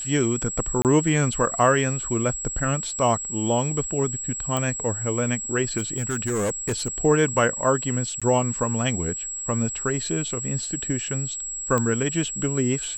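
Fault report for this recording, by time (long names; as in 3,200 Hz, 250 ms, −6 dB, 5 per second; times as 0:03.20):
whistle 7,700 Hz −29 dBFS
0:00.82–0:00.85: drop-out 28 ms
0:04.57: click −11 dBFS
0:05.77–0:06.88: clipping −21 dBFS
0:08.20–0:08.22: drop-out 16 ms
0:11.78: click −11 dBFS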